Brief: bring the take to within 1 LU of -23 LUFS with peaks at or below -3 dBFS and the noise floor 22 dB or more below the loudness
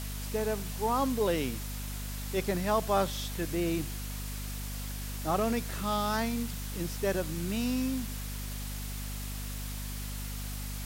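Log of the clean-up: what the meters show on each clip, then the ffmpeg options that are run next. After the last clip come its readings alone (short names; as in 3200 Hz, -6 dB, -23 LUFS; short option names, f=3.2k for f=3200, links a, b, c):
hum 50 Hz; harmonics up to 250 Hz; hum level -36 dBFS; noise floor -37 dBFS; noise floor target -55 dBFS; loudness -33.0 LUFS; peak -14.0 dBFS; loudness target -23.0 LUFS
-> -af "bandreject=f=50:t=h:w=4,bandreject=f=100:t=h:w=4,bandreject=f=150:t=h:w=4,bandreject=f=200:t=h:w=4,bandreject=f=250:t=h:w=4"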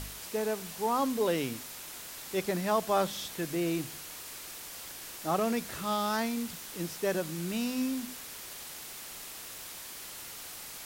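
hum none; noise floor -44 dBFS; noise floor target -56 dBFS
-> -af "afftdn=nr=12:nf=-44"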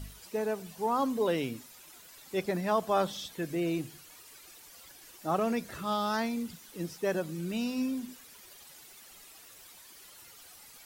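noise floor -53 dBFS; noise floor target -55 dBFS
-> -af "afftdn=nr=6:nf=-53"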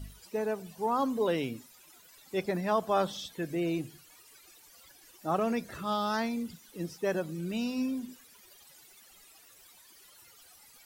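noise floor -58 dBFS; loudness -32.5 LUFS; peak -15.5 dBFS; loudness target -23.0 LUFS
-> -af "volume=9.5dB"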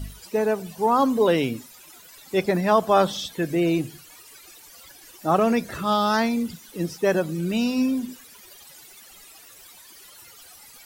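loudness -23.0 LUFS; peak -6.0 dBFS; noise floor -48 dBFS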